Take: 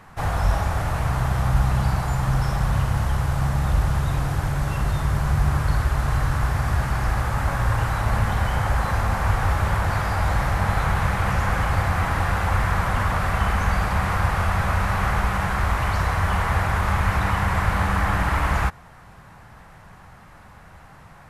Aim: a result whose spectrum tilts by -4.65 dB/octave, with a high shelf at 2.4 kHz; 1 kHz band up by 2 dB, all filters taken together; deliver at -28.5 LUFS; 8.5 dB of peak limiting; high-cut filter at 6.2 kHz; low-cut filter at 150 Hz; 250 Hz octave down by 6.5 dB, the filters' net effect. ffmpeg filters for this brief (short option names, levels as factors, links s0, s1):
-af "highpass=150,lowpass=6200,equalizer=f=250:t=o:g=-8.5,equalizer=f=1000:t=o:g=4.5,highshelf=f=2400:g=-8.5,volume=1.06,alimiter=limit=0.106:level=0:latency=1"